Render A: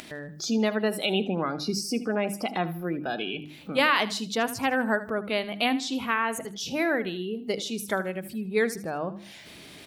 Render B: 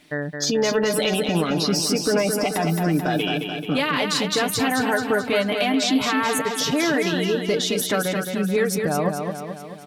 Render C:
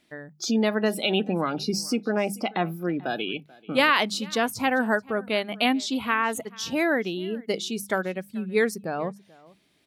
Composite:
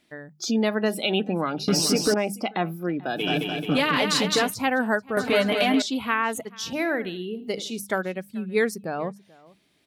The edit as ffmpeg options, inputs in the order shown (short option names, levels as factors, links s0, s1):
-filter_complex "[1:a]asplit=3[s0][s1][s2];[2:a]asplit=5[s3][s4][s5][s6][s7];[s3]atrim=end=1.682[s8];[s0]atrim=start=1.678:end=2.142[s9];[s4]atrim=start=2.138:end=3.31[s10];[s1]atrim=start=3.15:end=4.56[s11];[s5]atrim=start=4.4:end=5.172[s12];[s2]atrim=start=5.168:end=5.822[s13];[s6]atrim=start=5.818:end=6.732[s14];[0:a]atrim=start=6.728:end=7.792[s15];[s7]atrim=start=7.788[s16];[s8][s9]acrossfade=d=0.004:c1=hsin:c2=hsin[s17];[s17][s10]acrossfade=d=0.004:c1=hsin:c2=hsin[s18];[s18][s11]acrossfade=d=0.16:c1=tri:c2=tri[s19];[s19][s12]acrossfade=d=0.16:c1=tri:c2=tri[s20];[s20][s13]acrossfade=d=0.004:c1=hsin:c2=hsin[s21];[s21][s14]acrossfade=d=0.004:c1=hsin:c2=hsin[s22];[s22][s15]acrossfade=d=0.004:c1=hsin:c2=hsin[s23];[s23][s16]acrossfade=d=0.004:c1=hsin:c2=hsin"